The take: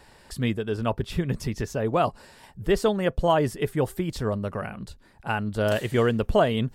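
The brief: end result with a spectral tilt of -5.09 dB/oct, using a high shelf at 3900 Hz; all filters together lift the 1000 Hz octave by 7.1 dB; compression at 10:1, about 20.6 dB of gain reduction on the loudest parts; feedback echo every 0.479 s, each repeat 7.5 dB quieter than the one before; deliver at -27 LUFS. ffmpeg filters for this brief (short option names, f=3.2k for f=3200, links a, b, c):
-af "equalizer=f=1k:t=o:g=9,highshelf=f=3.9k:g=6.5,acompressor=threshold=-32dB:ratio=10,aecho=1:1:479|958|1437|1916|2395:0.422|0.177|0.0744|0.0312|0.0131,volume=9.5dB"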